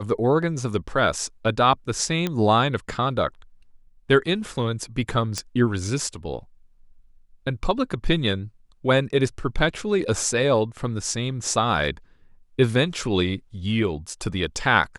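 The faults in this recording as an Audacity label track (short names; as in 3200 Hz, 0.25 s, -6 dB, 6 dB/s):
2.270000	2.270000	pop -11 dBFS
5.380000	5.380000	pop -12 dBFS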